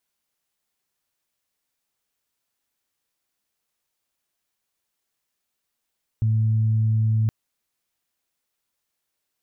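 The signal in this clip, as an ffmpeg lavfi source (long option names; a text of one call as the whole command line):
ffmpeg -f lavfi -i "aevalsrc='0.141*sin(2*PI*110*t)+0.0178*sin(2*PI*220*t)':duration=1.07:sample_rate=44100" out.wav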